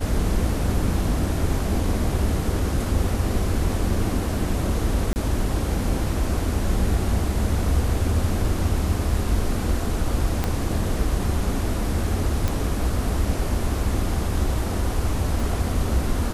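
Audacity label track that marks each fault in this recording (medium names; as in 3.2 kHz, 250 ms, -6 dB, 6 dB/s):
5.130000	5.160000	dropout 29 ms
10.440000	10.440000	pop -9 dBFS
12.480000	12.480000	pop
15.400000	15.400000	dropout 2.5 ms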